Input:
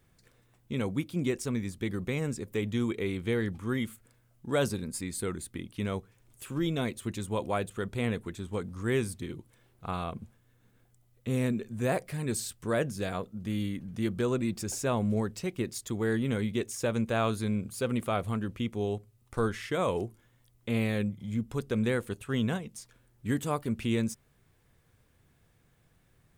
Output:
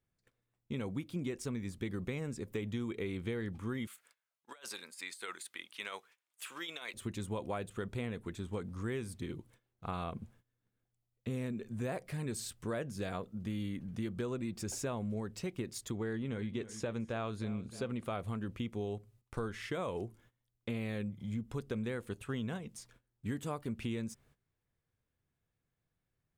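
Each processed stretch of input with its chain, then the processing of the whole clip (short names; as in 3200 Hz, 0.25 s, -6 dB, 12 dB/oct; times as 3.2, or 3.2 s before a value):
3.87–6.94 HPF 970 Hz + negative-ratio compressor -42 dBFS, ratio -0.5 + bell 3000 Hz +3 dB 1.7 oct
15.91–18.05 air absorption 50 m + feedback echo 0.31 s, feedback 37%, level -18 dB
whole clip: gate -59 dBFS, range -17 dB; high shelf 7600 Hz -5.5 dB; compressor, threshold -32 dBFS; gain -2 dB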